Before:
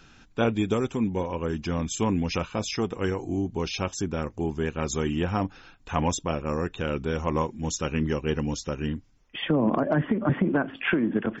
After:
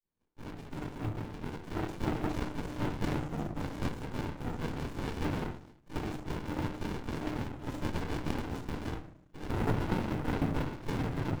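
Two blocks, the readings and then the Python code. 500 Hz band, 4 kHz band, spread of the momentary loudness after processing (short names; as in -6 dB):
-11.5 dB, -11.0 dB, 9 LU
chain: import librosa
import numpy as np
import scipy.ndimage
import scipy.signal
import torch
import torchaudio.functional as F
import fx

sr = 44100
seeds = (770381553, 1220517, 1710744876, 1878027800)

y = fx.fade_in_head(x, sr, length_s=3.08)
y = scipy.signal.sosfilt(scipy.signal.butter(2, 86.0, 'highpass', fs=sr, output='sos'), y)
y = fx.spec_box(y, sr, start_s=5.07, length_s=0.23, low_hz=350.0, high_hz=1000.0, gain_db=6)
y = fx.hum_notches(y, sr, base_hz=60, count=6)
y = fx.spec_gate(y, sr, threshold_db=-15, keep='weak')
y = fx.peak_eq(y, sr, hz=4800.0, db=-13.0, octaves=0.35)
y = fx.rider(y, sr, range_db=4, speed_s=2.0)
y = fx.quant_float(y, sr, bits=2)
y = fx.rev_fdn(y, sr, rt60_s=0.53, lf_ratio=1.6, hf_ratio=0.4, size_ms=20.0, drr_db=-7.0)
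y = fx.running_max(y, sr, window=65)
y = F.gain(torch.from_numpy(y), 2.0).numpy()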